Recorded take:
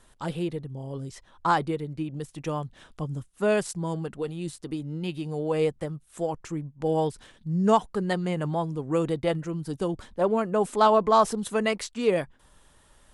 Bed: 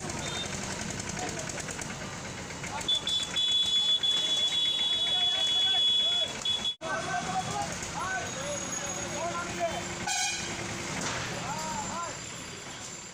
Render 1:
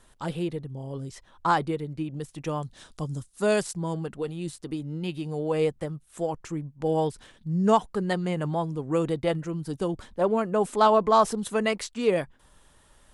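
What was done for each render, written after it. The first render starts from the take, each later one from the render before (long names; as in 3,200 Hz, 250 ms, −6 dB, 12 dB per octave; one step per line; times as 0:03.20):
0:02.62–0:03.62: flat-topped bell 6,400 Hz +9 dB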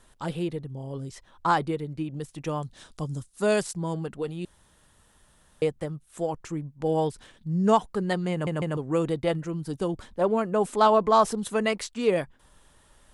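0:04.45–0:05.62: fill with room tone
0:08.32: stutter in place 0.15 s, 3 plays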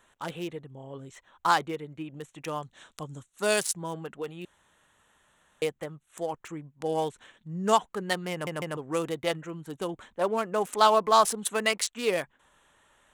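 adaptive Wiener filter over 9 samples
spectral tilt +3.5 dB per octave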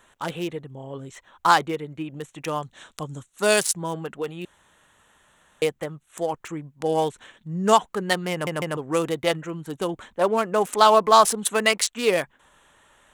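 level +6 dB
brickwall limiter −3 dBFS, peak gain reduction 2.5 dB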